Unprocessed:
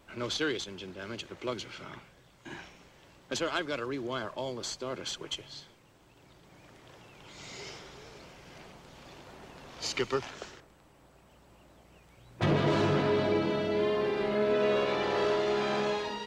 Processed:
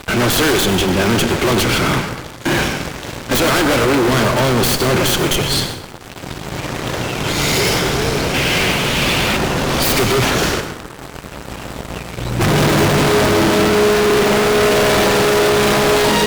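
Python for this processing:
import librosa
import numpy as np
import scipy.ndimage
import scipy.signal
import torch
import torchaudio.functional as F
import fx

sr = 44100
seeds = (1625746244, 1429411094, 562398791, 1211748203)

p1 = fx.tracing_dist(x, sr, depth_ms=0.23)
p2 = fx.peak_eq(p1, sr, hz=2700.0, db=13.0, octaves=1.5, at=(8.34, 9.37))
p3 = fx.sample_hold(p2, sr, seeds[0], rate_hz=1100.0, jitter_pct=0)
p4 = p2 + F.gain(torch.from_numpy(p3), -5.0).numpy()
p5 = fx.fuzz(p4, sr, gain_db=48.0, gate_db=-55.0)
y = fx.rev_plate(p5, sr, seeds[1], rt60_s=1.0, hf_ratio=0.55, predelay_ms=80, drr_db=8.5)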